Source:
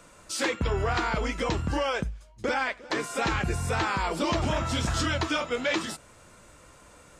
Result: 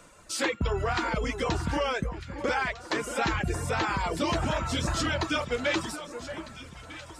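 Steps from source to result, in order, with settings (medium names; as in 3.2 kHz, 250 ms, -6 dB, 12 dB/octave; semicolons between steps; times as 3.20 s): reverb removal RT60 0.75 s; echo whose repeats swap between lows and highs 626 ms, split 1.8 kHz, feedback 66%, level -10 dB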